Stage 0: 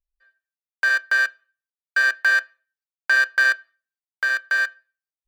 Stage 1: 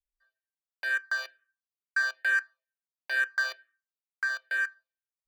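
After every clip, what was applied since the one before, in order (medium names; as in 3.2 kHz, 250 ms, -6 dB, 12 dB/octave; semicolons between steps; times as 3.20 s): barber-pole phaser -2.2 Hz; trim -6.5 dB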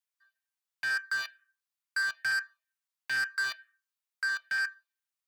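high-pass 900 Hz 24 dB/octave; saturation -30.5 dBFS, distortion -9 dB; trim +4 dB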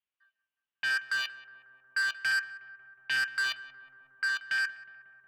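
peaking EQ 2.9 kHz +12 dB 0.45 oct; filtered feedback delay 182 ms, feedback 82%, low-pass 1.6 kHz, level -15 dB; level-controlled noise filter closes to 2.2 kHz, open at -29.5 dBFS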